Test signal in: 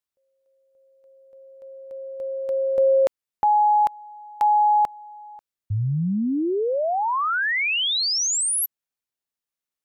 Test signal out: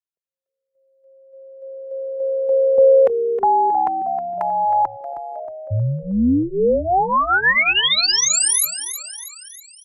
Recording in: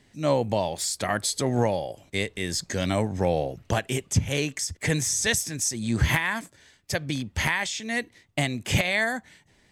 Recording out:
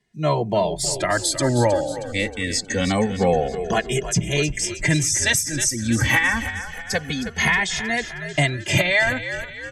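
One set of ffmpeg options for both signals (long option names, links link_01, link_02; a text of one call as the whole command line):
ffmpeg -i in.wav -filter_complex "[0:a]afftdn=noise_reduction=17:noise_floor=-41,equalizer=frequency=1900:width_type=o:width=0.35:gain=3,acrossover=split=100|7400[link_01][link_02][link_03];[link_01]acompressor=threshold=-44dB:ratio=8:attack=0.41:release=334:knee=6:detection=rms[link_04];[link_04][link_02][link_03]amix=inputs=3:normalize=0,asplit=7[link_05][link_06][link_07][link_08][link_09][link_10][link_11];[link_06]adelay=315,afreqshift=-71,volume=-11dB[link_12];[link_07]adelay=630,afreqshift=-142,volume=-16.7dB[link_13];[link_08]adelay=945,afreqshift=-213,volume=-22.4dB[link_14];[link_09]adelay=1260,afreqshift=-284,volume=-28dB[link_15];[link_10]adelay=1575,afreqshift=-355,volume=-33.7dB[link_16];[link_11]adelay=1890,afreqshift=-426,volume=-39.4dB[link_17];[link_05][link_12][link_13][link_14][link_15][link_16][link_17]amix=inputs=7:normalize=0,asplit=2[link_18][link_19];[link_19]adelay=2.4,afreqshift=-0.26[link_20];[link_18][link_20]amix=inputs=2:normalize=1,volume=8dB" out.wav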